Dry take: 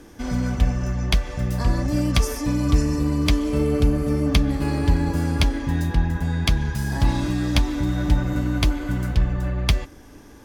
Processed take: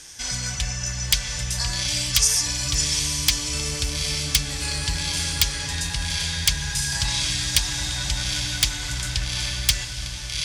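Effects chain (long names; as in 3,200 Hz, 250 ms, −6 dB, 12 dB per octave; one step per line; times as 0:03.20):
low-pass filter 9,200 Hz 24 dB per octave
spectral tilt +2 dB per octave
notch filter 1,200 Hz, Q 15
on a send: feedback delay with all-pass diffusion 824 ms, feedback 43%, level −7 dB
on the sum: wave folding −12.5 dBFS
in parallel at −1 dB: brickwall limiter −21 dBFS, peak gain reduction 8.5 dB
on the sum: drawn EQ curve 140 Hz 0 dB, 250 Hz −16 dB, 5,400 Hz +12 dB
level −5 dB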